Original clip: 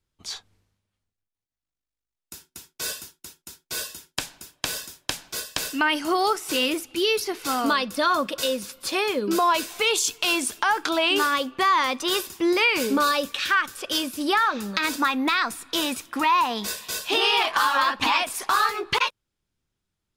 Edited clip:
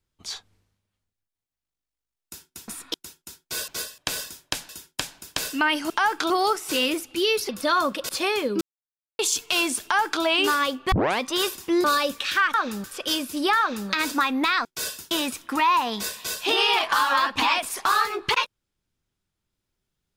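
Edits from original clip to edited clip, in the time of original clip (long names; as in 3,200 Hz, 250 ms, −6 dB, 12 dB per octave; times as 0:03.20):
0:02.68–0:03.14: swap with 0:15.49–0:15.75
0:03.88–0:04.55: swap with 0:05.26–0:05.56
0:07.29–0:07.83: remove
0:08.43–0:08.81: remove
0:09.33–0:09.91: silence
0:10.55–0:10.95: duplicate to 0:06.10
0:11.64: tape start 0.28 s
0:12.56–0:12.98: remove
0:14.43–0:14.73: duplicate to 0:13.68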